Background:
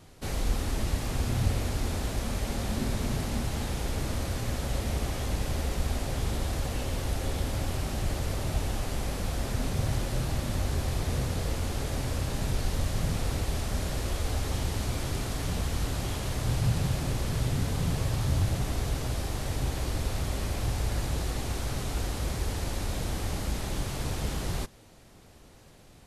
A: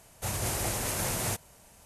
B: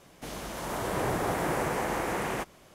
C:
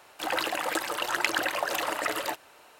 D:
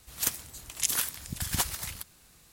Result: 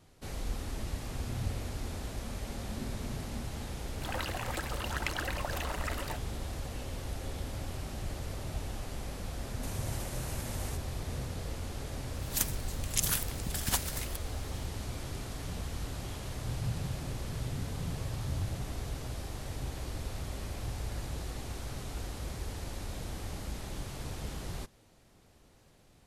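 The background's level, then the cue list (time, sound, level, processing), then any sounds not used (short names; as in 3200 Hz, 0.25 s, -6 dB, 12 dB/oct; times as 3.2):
background -8 dB
3.82 add C -9 dB
9.41 add A -2.5 dB + compressor, threshold -38 dBFS
12.14 add D -2.5 dB
not used: B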